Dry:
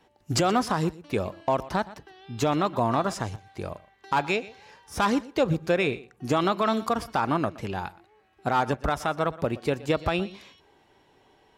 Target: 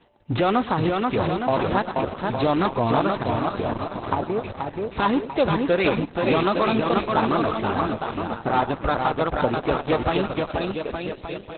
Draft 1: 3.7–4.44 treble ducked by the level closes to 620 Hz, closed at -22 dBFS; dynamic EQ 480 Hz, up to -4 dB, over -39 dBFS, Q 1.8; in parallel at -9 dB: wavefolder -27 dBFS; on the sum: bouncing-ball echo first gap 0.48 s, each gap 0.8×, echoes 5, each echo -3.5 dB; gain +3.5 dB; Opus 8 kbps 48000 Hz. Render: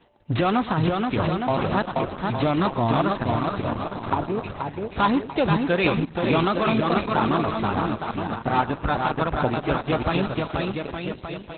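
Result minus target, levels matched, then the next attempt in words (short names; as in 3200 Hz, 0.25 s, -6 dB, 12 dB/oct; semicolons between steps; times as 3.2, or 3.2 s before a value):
125 Hz band +3.0 dB
3.7–4.44 treble ducked by the level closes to 620 Hz, closed at -22 dBFS; dynamic EQ 150 Hz, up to -4 dB, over -39 dBFS, Q 1.8; in parallel at -9 dB: wavefolder -27 dBFS; on the sum: bouncing-ball echo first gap 0.48 s, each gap 0.8×, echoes 5, each echo -3.5 dB; gain +3.5 dB; Opus 8 kbps 48000 Hz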